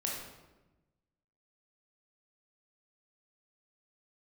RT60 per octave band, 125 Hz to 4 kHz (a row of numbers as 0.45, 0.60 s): 1.6, 1.4, 1.2, 1.0, 0.90, 0.75 s